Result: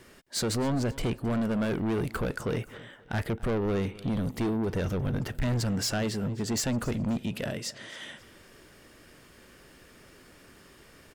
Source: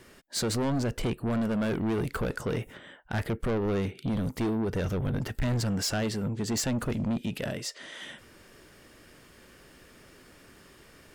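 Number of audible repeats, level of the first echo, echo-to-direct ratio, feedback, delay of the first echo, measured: 2, -19.5 dB, -19.0 dB, 33%, 0.265 s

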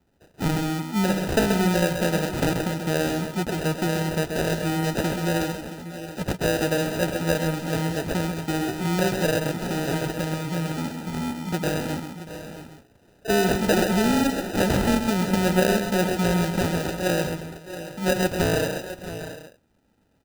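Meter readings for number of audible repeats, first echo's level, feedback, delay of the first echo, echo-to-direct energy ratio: 5, -7.0 dB, no steady repeat, 0.131 s, -5.0 dB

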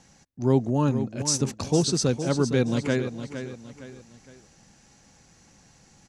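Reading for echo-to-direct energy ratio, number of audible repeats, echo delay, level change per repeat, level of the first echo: -9.5 dB, 3, 0.462 s, -8.0 dB, -10.0 dB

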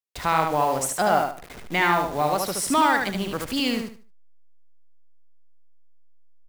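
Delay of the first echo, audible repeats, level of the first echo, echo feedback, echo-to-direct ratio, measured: 74 ms, 3, -4.0 dB, 26%, -3.5 dB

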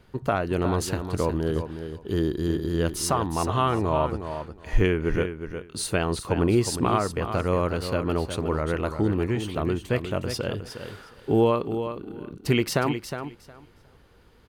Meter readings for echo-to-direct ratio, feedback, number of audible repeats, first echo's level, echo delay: -9.0 dB, 17%, 2, -9.0 dB, 0.362 s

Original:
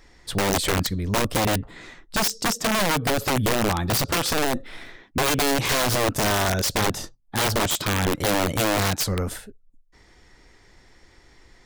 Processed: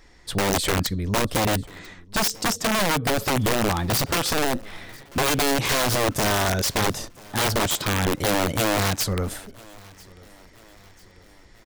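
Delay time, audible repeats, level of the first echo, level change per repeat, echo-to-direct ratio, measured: 0.992 s, 2, -24.0 dB, -6.0 dB, -23.0 dB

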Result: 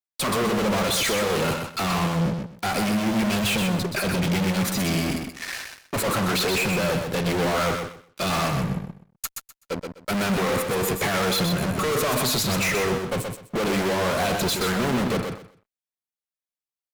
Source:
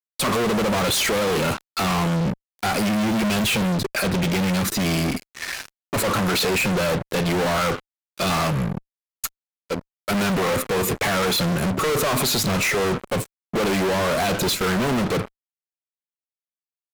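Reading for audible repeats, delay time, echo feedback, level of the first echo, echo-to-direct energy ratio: 3, 0.126 s, 21%, -5.5 dB, -5.5 dB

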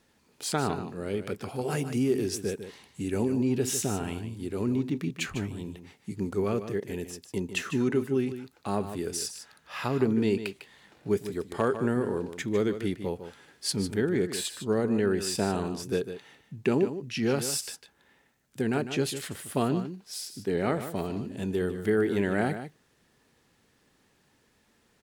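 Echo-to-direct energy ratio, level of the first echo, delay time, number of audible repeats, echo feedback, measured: -10.5 dB, -10.5 dB, 0.151 s, 1, no steady repeat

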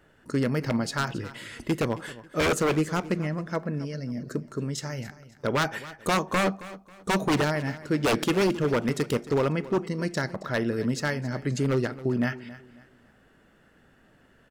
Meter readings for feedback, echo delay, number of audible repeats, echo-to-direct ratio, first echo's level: 31%, 0.271 s, 2, -16.5 dB, -17.0 dB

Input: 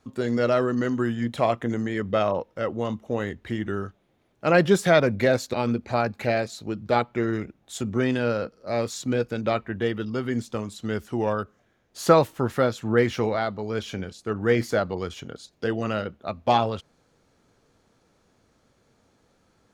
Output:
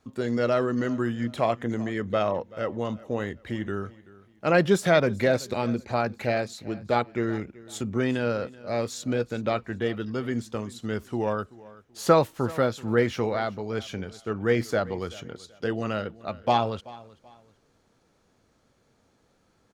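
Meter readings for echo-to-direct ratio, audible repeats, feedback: -20.0 dB, 2, 31%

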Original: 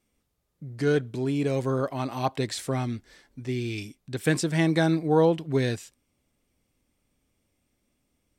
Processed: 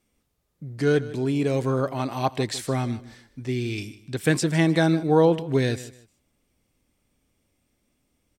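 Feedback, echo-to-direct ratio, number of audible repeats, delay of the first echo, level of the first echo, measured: 26%, -16.5 dB, 2, 0.153 s, -17.0 dB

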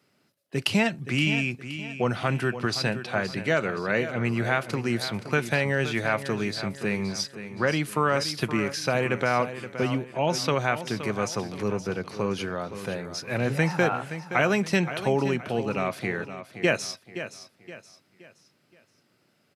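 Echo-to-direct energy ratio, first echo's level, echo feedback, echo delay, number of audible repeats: -11.0 dB, -11.5 dB, 38%, 0.521 s, 3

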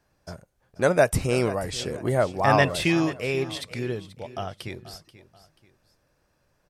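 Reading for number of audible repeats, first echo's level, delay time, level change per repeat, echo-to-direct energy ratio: 2, -16.0 dB, 0.484 s, -9.0 dB, -15.5 dB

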